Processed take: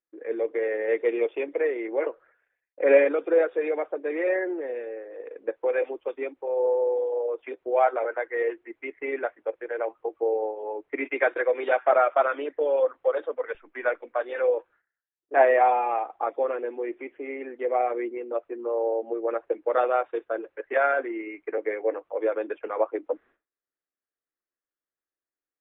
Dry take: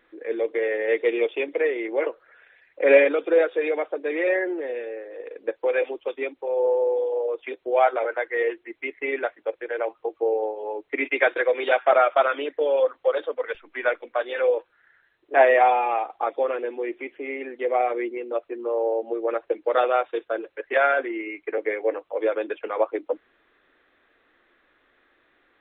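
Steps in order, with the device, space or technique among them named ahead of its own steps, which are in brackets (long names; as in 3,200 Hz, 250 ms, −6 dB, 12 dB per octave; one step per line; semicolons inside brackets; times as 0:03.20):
hearing-loss simulation (low-pass filter 1,900 Hz 12 dB per octave; downward expander −45 dBFS)
level −2 dB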